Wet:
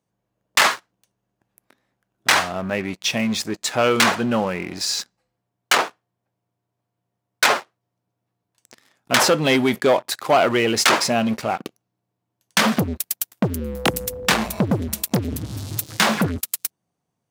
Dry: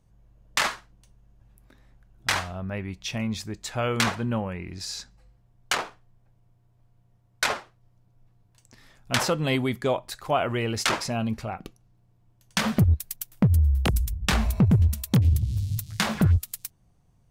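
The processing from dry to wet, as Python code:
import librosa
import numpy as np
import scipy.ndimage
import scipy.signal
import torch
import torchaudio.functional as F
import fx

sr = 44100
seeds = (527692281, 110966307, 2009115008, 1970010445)

y = fx.leveller(x, sr, passes=3)
y = fx.dmg_tone(y, sr, hz=500.0, level_db=-30.0, at=(13.6, 14.34), fade=0.02)
y = scipy.signal.sosfilt(scipy.signal.butter(2, 230.0, 'highpass', fs=sr, output='sos'), y)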